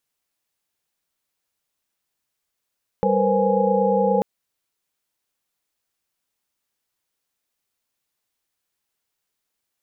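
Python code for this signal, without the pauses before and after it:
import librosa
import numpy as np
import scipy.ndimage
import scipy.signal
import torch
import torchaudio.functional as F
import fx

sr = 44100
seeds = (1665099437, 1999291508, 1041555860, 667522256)

y = fx.chord(sr, length_s=1.19, notes=(55, 70, 71, 72, 80), wave='sine', level_db=-22.5)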